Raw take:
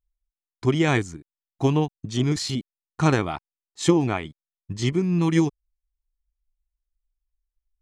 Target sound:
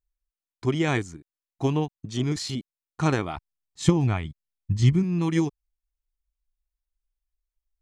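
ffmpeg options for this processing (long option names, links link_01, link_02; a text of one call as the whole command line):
ffmpeg -i in.wav -filter_complex "[0:a]asplit=3[link_01][link_02][link_03];[link_01]afade=type=out:start_time=3.36:duration=0.02[link_04];[link_02]asubboost=boost=11:cutoff=150,afade=type=in:start_time=3.36:duration=0.02,afade=type=out:start_time=5.02:duration=0.02[link_05];[link_03]afade=type=in:start_time=5.02:duration=0.02[link_06];[link_04][link_05][link_06]amix=inputs=3:normalize=0,volume=-3.5dB" out.wav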